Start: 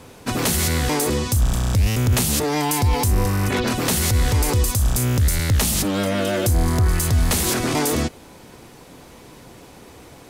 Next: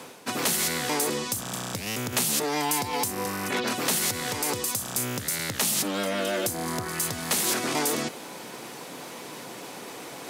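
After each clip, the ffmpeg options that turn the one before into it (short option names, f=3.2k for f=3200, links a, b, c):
-af "highpass=f=140:w=0.5412,highpass=f=140:w=1.3066,lowshelf=f=330:g=-9,areverse,acompressor=mode=upward:threshold=-26dB:ratio=2.5,areverse,volume=-3dB"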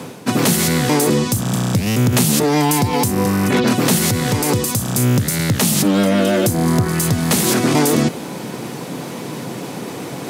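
-af "equalizer=f=130:w=0.43:g=15,volume=6.5dB"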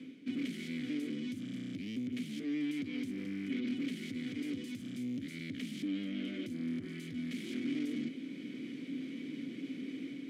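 -filter_complex "[0:a]dynaudnorm=f=110:g=5:m=4dB,asoftclip=type=tanh:threshold=-17dB,asplit=3[a][b][c];[a]bandpass=f=270:t=q:w=8,volume=0dB[d];[b]bandpass=f=2.29k:t=q:w=8,volume=-6dB[e];[c]bandpass=f=3.01k:t=q:w=8,volume=-9dB[f];[d][e][f]amix=inputs=3:normalize=0,volume=-7.5dB"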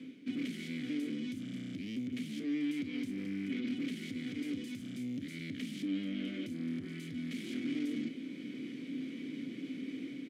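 -filter_complex "[0:a]asplit=2[a][b];[b]adelay=31,volume=-13dB[c];[a][c]amix=inputs=2:normalize=0"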